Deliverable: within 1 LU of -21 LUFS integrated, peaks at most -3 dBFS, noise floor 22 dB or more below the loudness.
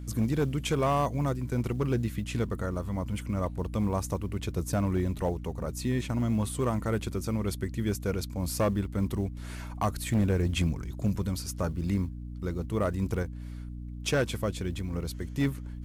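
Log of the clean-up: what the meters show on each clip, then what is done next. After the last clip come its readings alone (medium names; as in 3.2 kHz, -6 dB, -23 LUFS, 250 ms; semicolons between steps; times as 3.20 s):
clipped samples 0.9%; clipping level -20.0 dBFS; hum 60 Hz; highest harmonic 300 Hz; hum level -37 dBFS; loudness -30.5 LUFS; peak level -20.0 dBFS; loudness target -21.0 LUFS
-> clip repair -20 dBFS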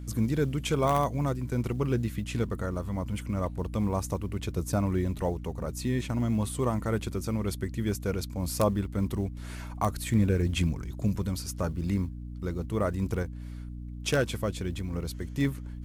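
clipped samples 0.0%; hum 60 Hz; highest harmonic 300 Hz; hum level -36 dBFS
-> hum notches 60/120/180/240/300 Hz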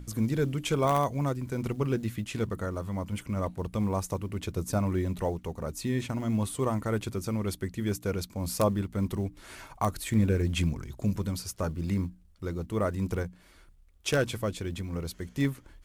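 hum not found; loudness -31.0 LUFS; peak level -10.5 dBFS; loudness target -21.0 LUFS
-> trim +10 dB; peak limiter -3 dBFS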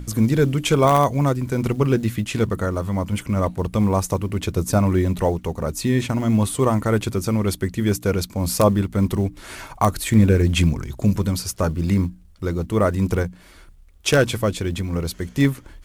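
loudness -21.0 LUFS; peak level -3.0 dBFS; noise floor -47 dBFS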